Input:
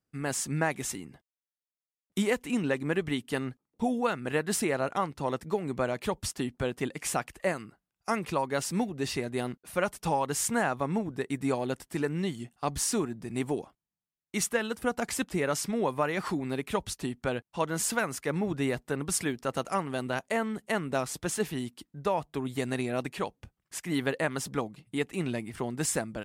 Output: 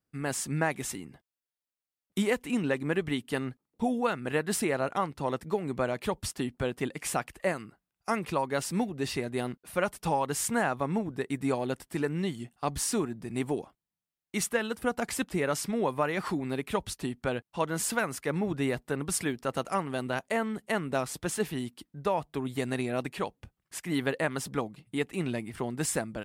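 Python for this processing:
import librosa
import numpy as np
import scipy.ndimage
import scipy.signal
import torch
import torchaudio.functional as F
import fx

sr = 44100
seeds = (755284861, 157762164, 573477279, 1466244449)

y = fx.peak_eq(x, sr, hz=6400.0, db=-3.0, octaves=0.63)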